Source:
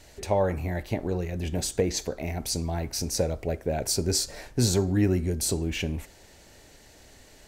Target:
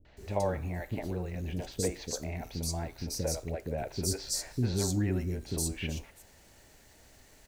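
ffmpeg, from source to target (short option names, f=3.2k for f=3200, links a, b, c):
-filter_complex "[0:a]acrusher=bits=8:mix=0:aa=0.5,acrossover=split=400|3800[a][b][c];[b]adelay=50[d];[c]adelay=170[e];[a][d][e]amix=inputs=3:normalize=0,volume=-5dB"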